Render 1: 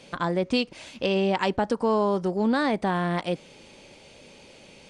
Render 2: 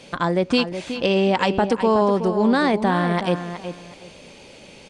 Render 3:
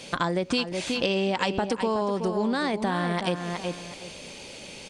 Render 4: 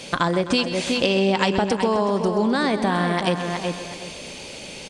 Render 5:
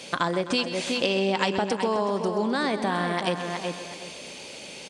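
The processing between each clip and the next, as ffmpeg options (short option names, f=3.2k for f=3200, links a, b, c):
-filter_complex "[0:a]asplit=2[a][b];[b]adelay=371,lowpass=f=3.8k:p=1,volume=-9.5dB,asplit=2[c][d];[d]adelay=371,lowpass=f=3.8k:p=1,volume=0.24,asplit=2[e][f];[f]adelay=371,lowpass=f=3.8k:p=1,volume=0.24[g];[a][c][e][g]amix=inputs=4:normalize=0,volume=5dB"
-af "acompressor=threshold=-23dB:ratio=6,highshelf=f=3.1k:g=8"
-af "aecho=1:1:129|258|387|516|645|774:0.251|0.136|0.0732|0.0396|0.0214|0.0115,volume=5dB"
-af "highpass=f=210:p=1,volume=-3.5dB"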